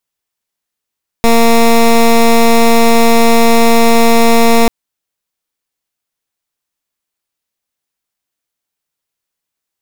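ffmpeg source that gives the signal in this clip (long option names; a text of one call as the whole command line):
ffmpeg -f lavfi -i "aevalsrc='0.473*(2*lt(mod(231*t,1),0.15)-1)':duration=3.44:sample_rate=44100" out.wav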